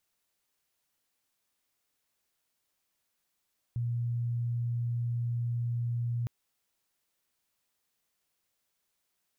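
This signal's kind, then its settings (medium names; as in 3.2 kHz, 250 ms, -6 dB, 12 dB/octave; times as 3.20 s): tone sine 119 Hz -28.5 dBFS 2.51 s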